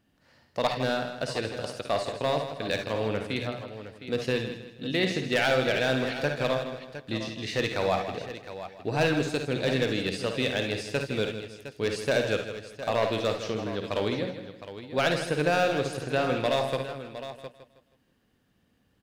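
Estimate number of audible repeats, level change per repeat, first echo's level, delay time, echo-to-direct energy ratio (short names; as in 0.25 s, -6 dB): 9, no steady repeat, -8.5 dB, 54 ms, -3.5 dB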